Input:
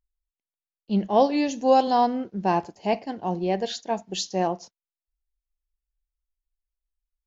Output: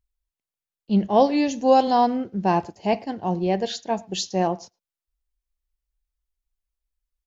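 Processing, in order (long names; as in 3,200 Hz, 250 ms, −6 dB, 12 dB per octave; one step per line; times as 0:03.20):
parametric band 90 Hz +7 dB 1.6 octaves
far-end echo of a speakerphone 110 ms, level −26 dB
level +1.5 dB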